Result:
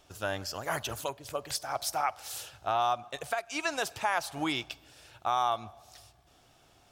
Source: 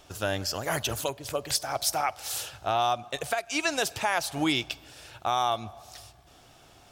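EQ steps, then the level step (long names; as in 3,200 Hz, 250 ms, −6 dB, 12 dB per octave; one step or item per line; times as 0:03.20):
dynamic equaliser 1,100 Hz, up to +7 dB, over −39 dBFS, Q 0.92
−7.0 dB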